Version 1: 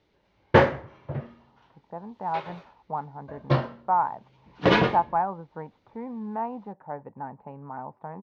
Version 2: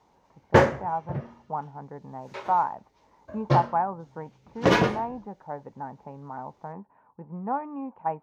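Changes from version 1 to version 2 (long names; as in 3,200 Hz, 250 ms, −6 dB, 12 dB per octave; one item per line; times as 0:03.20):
speech: entry −1.40 s
master: add high shelf with overshoot 5,400 Hz +12.5 dB, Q 1.5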